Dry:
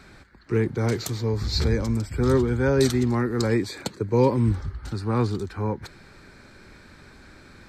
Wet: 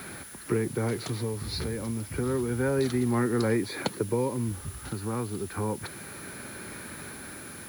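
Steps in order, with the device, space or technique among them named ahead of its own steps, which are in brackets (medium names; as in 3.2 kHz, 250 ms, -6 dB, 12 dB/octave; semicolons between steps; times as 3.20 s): medium wave at night (band-pass 110–3800 Hz; compression 4:1, threshold -32 dBFS, peak gain reduction 14.5 dB; tremolo 0.3 Hz, depth 53%; whistle 10 kHz -53 dBFS; white noise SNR 20 dB); trim +8 dB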